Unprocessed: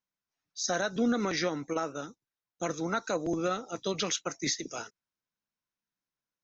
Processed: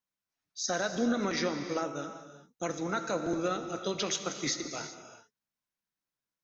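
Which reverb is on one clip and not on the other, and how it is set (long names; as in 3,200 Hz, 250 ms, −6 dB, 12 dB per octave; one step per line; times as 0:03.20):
reverb whose tail is shaped and stops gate 420 ms flat, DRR 7 dB
level −1.5 dB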